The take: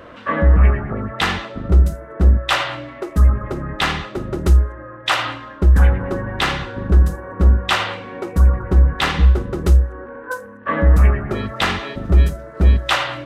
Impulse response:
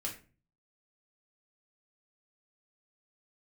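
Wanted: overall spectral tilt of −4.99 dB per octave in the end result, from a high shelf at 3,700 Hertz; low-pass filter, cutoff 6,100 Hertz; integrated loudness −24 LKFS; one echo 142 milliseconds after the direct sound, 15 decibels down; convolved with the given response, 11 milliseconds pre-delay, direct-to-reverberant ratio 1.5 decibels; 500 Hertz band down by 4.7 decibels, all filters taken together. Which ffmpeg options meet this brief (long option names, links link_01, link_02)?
-filter_complex "[0:a]lowpass=6100,equalizer=frequency=500:width_type=o:gain=-6,highshelf=frequency=3700:gain=-7.5,aecho=1:1:142:0.178,asplit=2[link_01][link_02];[1:a]atrim=start_sample=2205,adelay=11[link_03];[link_02][link_03]afir=irnorm=-1:irlink=0,volume=-2dB[link_04];[link_01][link_04]amix=inputs=2:normalize=0,volume=-5.5dB"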